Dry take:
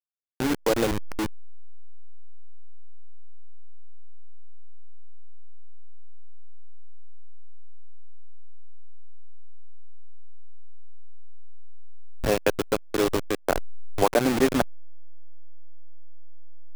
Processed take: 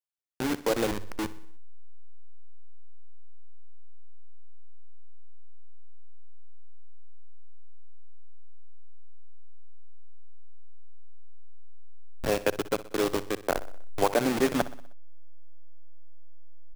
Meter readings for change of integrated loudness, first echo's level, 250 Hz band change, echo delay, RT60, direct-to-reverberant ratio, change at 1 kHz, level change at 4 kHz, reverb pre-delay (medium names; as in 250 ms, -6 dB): -3.5 dB, -16.5 dB, -4.0 dB, 62 ms, no reverb, no reverb, -3.0 dB, -3.0 dB, no reverb